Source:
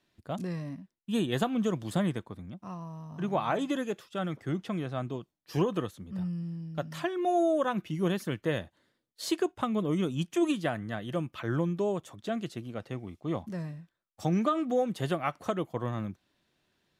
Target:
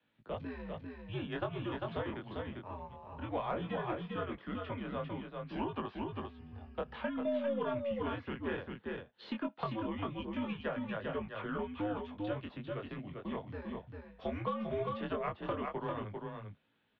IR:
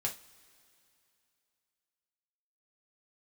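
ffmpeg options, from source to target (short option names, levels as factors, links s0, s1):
-filter_complex "[0:a]asettb=1/sr,asplit=3[s0][s1][s2];[s0]atrim=end=5.714[s3];[s1]atrim=start=5.71:end=6.95,asetpts=PTS-STARTPTS,afade=t=in:d=0.004:c=qsin,afade=t=out:st=1.236:d=0.004:c=qsin,equalizer=f=880:w=3.2:g=7.5[s4];[s2]atrim=start=6.946[s5];[s3][s4]acrossfade=d=0.004:c1=hsin:c2=qsin[s6];[s6][s5]acrossfade=d=0.004:c1=qsin:c2=hsin,highpass=f=220:t=q:w=0.5412,highpass=f=220:t=q:w=1.307,lowpass=f=3600:t=q:w=0.5176,lowpass=f=3600:t=q:w=0.7071,lowpass=f=3600:t=q:w=1.932,afreqshift=-97,flanger=delay=18.5:depth=6:speed=0.18,aeval=exprs='0.126*(cos(1*acos(clip(val(0)/0.126,-1,1)))-cos(1*PI/2))+0.002*(cos(6*acos(clip(val(0)/0.126,-1,1)))-cos(6*PI/2))':c=same,aecho=1:1:397:0.531,acrossover=split=220|490|1900[s7][s8][s9][s10];[s7]acompressor=threshold=0.00501:ratio=4[s11];[s8]acompressor=threshold=0.00562:ratio=4[s12];[s9]acompressor=threshold=0.0141:ratio=4[s13];[s10]acompressor=threshold=0.00178:ratio=4[s14];[s11][s12][s13][s14]amix=inputs=4:normalize=0,volume=1.19"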